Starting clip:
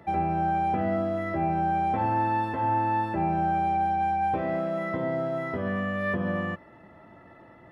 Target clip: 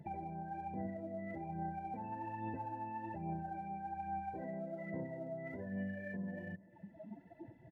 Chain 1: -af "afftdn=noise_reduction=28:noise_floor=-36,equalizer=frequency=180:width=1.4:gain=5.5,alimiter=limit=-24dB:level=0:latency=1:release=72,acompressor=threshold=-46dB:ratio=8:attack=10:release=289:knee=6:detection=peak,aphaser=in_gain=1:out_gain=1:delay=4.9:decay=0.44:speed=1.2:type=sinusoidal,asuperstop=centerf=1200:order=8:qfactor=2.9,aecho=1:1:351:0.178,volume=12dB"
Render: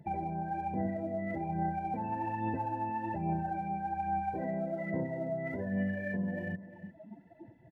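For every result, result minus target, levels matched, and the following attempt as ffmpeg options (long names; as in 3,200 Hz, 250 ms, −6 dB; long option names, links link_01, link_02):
downward compressor: peak gain reduction −8.5 dB; echo-to-direct +6 dB
-af "afftdn=noise_reduction=28:noise_floor=-36,equalizer=frequency=180:width=1.4:gain=5.5,alimiter=limit=-24dB:level=0:latency=1:release=72,acompressor=threshold=-55.5dB:ratio=8:attack=10:release=289:knee=6:detection=peak,aphaser=in_gain=1:out_gain=1:delay=4.9:decay=0.44:speed=1.2:type=sinusoidal,asuperstop=centerf=1200:order=8:qfactor=2.9,aecho=1:1:351:0.178,volume=12dB"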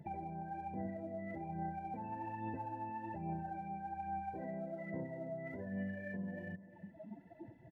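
echo-to-direct +6 dB
-af "afftdn=noise_reduction=28:noise_floor=-36,equalizer=frequency=180:width=1.4:gain=5.5,alimiter=limit=-24dB:level=0:latency=1:release=72,acompressor=threshold=-55.5dB:ratio=8:attack=10:release=289:knee=6:detection=peak,aphaser=in_gain=1:out_gain=1:delay=4.9:decay=0.44:speed=1.2:type=sinusoidal,asuperstop=centerf=1200:order=8:qfactor=2.9,aecho=1:1:351:0.0891,volume=12dB"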